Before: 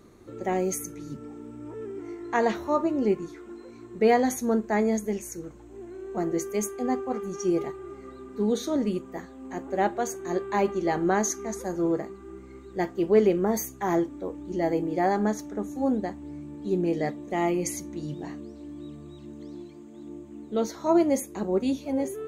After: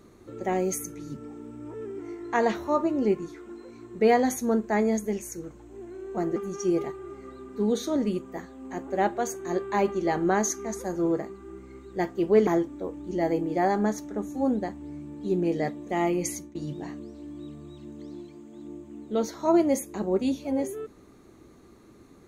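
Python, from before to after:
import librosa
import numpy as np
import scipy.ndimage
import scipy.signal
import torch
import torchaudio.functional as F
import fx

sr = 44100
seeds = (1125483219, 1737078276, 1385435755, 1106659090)

y = fx.edit(x, sr, fx.cut(start_s=6.36, length_s=0.8),
    fx.cut(start_s=13.27, length_s=0.61),
    fx.fade_out_to(start_s=17.67, length_s=0.29, curve='qsin', floor_db=-18.5), tone=tone)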